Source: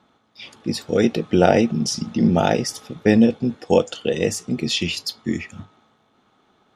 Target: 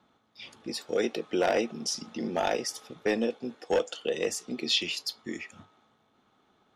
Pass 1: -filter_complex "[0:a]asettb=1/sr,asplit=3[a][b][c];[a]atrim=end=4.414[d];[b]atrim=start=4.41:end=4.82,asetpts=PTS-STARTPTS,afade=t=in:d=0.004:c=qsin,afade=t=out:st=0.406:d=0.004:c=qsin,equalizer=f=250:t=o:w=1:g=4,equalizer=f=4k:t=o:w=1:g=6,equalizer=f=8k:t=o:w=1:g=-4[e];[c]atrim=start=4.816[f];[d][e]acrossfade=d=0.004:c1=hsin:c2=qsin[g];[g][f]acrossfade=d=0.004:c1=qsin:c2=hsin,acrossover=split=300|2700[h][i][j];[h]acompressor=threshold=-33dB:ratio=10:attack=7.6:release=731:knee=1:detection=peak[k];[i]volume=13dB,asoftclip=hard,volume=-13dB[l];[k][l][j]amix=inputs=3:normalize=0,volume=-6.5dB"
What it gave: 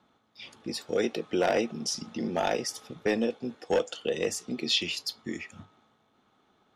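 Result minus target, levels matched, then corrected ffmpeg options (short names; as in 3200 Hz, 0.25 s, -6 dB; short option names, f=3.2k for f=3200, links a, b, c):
compressor: peak gain reduction -7 dB
-filter_complex "[0:a]asettb=1/sr,asplit=3[a][b][c];[a]atrim=end=4.414[d];[b]atrim=start=4.41:end=4.82,asetpts=PTS-STARTPTS,afade=t=in:d=0.004:c=qsin,afade=t=out:st=0.406:d=0.004:c=qsin,equalizer=f=250:t=o:w=1:g=4,equalizer=f=4k:t=o:w=1:g=6,equalizer=f=8k:t=o:w=1:g=-4[e];[c]atrim=start=4.816[f];[d][e]acrossfade=d=0.004:c1=hsin:c2=qsin[g];[g][f]acrossfade=d=0.004:c1=qsin:c2=hsin,acrossover=split=300|2700[h][i][j];[h]acompressor=threshold=-40.5dB:ratio=10:attack=7.6:release=731:knee=1:detection=peak[k];[i]volume=13dB,asoftclip=hard,volume=-13dB[l];[k][l][j]amix=inputs=3:normalize=0,volume=-6.5dB"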